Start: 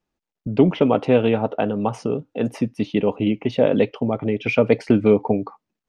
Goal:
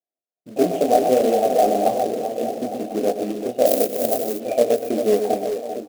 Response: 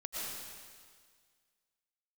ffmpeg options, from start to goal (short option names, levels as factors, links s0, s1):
-filter_complex "[0:a]asettb=1/sr,asplit=3[s0][s1][s2];[s0]atrim=end=0.564[s3];[s1]atrim=start=0.56:end=1.95,asetpts=PTS-STARTPTS,afade=t=in:d=0.004:c=qsin,afade=t=out:st=1.386:d=0.004:c=qsin,aeval=exprs='val(0)+0.5*0.15*sgn(val(0))':c=same[s4];[s2]atrim=start=1.946[s5];[s3][s4]acrossfade=d=0.004:c1=hsin:c2=qsin[s6];[s6][s5]acrossfade=d=0.004:c1=qsin:c2=hsin,asplit=3[s7][s8][s9];[s7]bandpass=f=730:t=q:w=8,volume=1[s10];[s8]bandpass=f=1090:t=q:w=8,volume=0.501[s11];[s9]bandpass=f=2440:t=q:w=8,volume=0.355[s12];[s10][s11][s12]amix=inputs=3:normalize=0,flanger=delay=22.5:depth=3.2:speed=1.6,firequalizer=gain_entry='entry(140,0);entry(260,7);entry(670,2);entry(1100,-24);entry(6700,2)':delay=0.05:min_phase=1,dynaudnorm=f=270:g=3:m=6.31,asplit=2[s13][s14];[s14]aecho=0:1:100|124|372|385|397|862:0.178|0.335|0.106|0.188|0.299|0.237[s15];[s13][s15]amix=inputs=2:normalize=0,acrusher=bits=4:mode=log:mix=0:aa=0.000001,asettb=1/sr,asplit=3[s16][s17][s18];[s16]atrim=end=3.664[s19];[s17]atrim=start=3.66:end=4.4,asetpts=PTS-STARTPTS,afade=t=in:d=0.004:c=qsin,afade=t=out:st=0.736:d=0.004:c=qsin,aemphasis=mode=production:type=50fm[s20];[s18]atrim=start=4.396[s21];[s19][s20]acrossfade=d=0.004:c1=hsin:c2=qsin[s22];[s22][s21]acrossfade=d=0.004:c1=qsin:c2=hsin,asplit=2[s23][s24];[s24]aecho=0:1:1044:0.158[s25];[s23][s25]amix=inputs=2:normalize=0,volume=0.794"